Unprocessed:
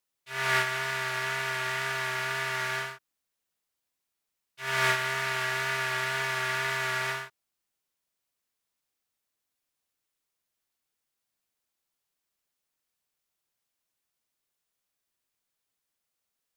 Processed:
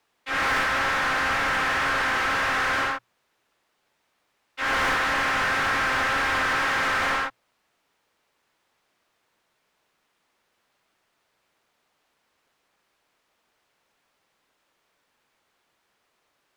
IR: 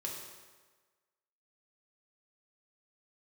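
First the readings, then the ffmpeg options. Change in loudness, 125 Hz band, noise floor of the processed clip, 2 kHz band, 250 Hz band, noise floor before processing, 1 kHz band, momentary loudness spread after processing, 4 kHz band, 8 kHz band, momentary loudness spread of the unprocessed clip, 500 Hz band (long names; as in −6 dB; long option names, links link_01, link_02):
+6.0 dB, −0.5 dB, −73 dBFS, +6.0 dB, +12.0 dB, −84 dBFS, +8.5 dB, 4 LU, +4.0 dB, +1.0 dB, 7 LU, +4.5 dB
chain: -filter_complex "[0:a]highshelf=frequency=5100:gain=-5.5,asplit=2[link_01][link_02];[link_02]highpass=frequency=720:poles=1,volume=35dB,asoftclip=type=tanh:threshold=-8dB[link_03];[link_01][link_03]amix=inputs=2:normalize=0,lowpass=frequency=1400:poles=1,volume=-6dB,afreqshift=-120,volume=-4.5dB"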